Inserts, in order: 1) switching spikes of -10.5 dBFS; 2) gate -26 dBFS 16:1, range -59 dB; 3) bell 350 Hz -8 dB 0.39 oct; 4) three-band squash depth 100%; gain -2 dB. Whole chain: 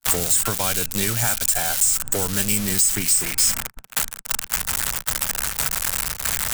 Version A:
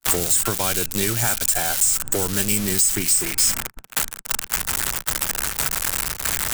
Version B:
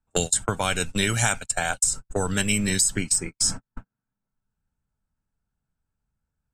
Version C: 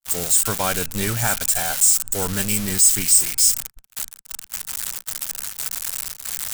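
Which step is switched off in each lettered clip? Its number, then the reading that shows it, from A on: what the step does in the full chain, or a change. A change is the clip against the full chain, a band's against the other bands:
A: 3, 500 Hz band +2.0 dB; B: 1, 8 kHz band -5.0 dB; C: 4, crest factor change -3.0 dB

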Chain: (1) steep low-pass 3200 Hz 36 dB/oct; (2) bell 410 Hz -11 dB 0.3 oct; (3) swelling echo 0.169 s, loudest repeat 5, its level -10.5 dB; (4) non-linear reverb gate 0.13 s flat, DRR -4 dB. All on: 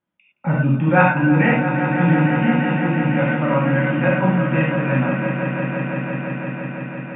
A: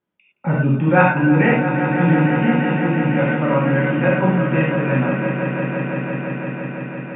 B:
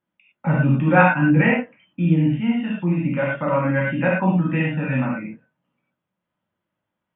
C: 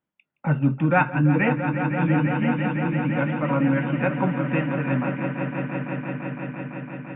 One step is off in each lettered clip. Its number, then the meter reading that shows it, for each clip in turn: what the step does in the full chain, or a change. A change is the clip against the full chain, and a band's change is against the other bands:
2, 500 Hz band +2.0 dB; 3, echo-to-direct 7.5 dB to 4.0 dB; 4, echo-to-direct 7.5 dB to -1.0 dB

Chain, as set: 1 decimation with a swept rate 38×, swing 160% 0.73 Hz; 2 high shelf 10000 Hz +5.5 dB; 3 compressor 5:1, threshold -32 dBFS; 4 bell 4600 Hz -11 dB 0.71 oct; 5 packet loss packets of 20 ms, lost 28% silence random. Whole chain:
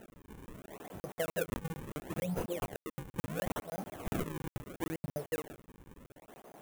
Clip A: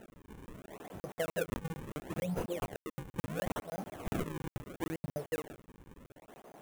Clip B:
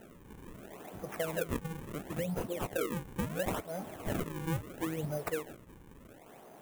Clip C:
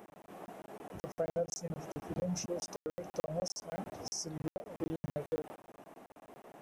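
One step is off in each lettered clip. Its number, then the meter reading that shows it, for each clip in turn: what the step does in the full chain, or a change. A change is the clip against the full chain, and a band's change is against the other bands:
2, 8 kHz band -2.0 dB; 5, crest factor change -2.5 dB; 1, crest factor change -2.0 dB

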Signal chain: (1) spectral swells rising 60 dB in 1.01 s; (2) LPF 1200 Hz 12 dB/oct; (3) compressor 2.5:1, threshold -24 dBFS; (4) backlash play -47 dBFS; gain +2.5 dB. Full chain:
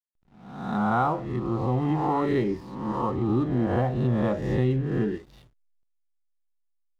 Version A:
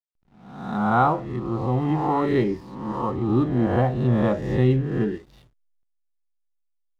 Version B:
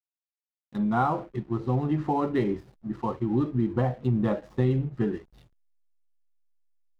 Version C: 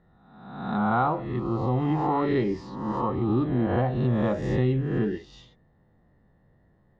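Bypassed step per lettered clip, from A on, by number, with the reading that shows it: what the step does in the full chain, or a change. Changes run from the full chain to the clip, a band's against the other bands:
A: 3, momentary loudness spread change +2 LU; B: 1, 2 kHz band -2.0 dB; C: 4, distortion -26 dB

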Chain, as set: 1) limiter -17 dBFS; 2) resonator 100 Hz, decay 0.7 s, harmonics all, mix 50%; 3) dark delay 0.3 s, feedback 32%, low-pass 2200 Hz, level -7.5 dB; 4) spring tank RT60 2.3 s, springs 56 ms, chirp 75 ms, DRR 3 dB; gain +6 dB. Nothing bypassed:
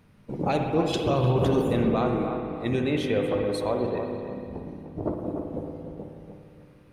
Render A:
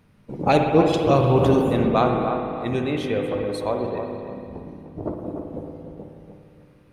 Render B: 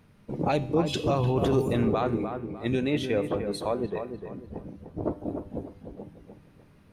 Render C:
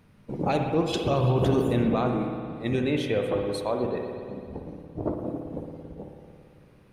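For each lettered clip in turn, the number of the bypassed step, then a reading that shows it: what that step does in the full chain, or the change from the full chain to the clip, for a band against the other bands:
1, crest factor change +1.5 dB; 4, echo-to-direct -1.5 dB to -8.5 dB; 3, echo-to-direct -1.5 dB to -3.0 dB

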